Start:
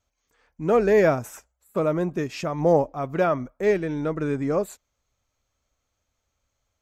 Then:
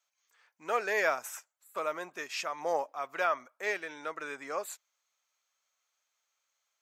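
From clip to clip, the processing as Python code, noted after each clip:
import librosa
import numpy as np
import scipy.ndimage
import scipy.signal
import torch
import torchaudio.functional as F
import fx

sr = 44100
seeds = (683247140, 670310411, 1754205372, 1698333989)

y = scipy.signal.sosfilt(scipy.signal.butter(2, 1100.0, 'highpass', fs=sr, output='sos'), x)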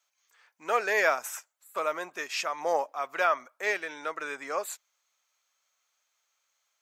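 y = fx.low_shelf(x, sr, hz=190.0, db=-9.5)
y = y * 10.0 ** (4.5 / 20.0)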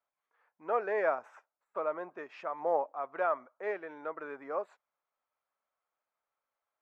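y = scipy.signal.sosfilt(scipy.signal.butter(2, 1000.0, 'lowpass', fs=sr, output='sos'), x)
y = y * 10.0 ** (-1.5 / 20.0)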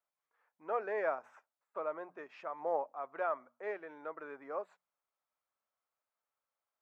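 y = fx.hum_notches(x, sr, base_hz=60, count=4)
y = y * 10.0 ** (-4.5 / 20.0)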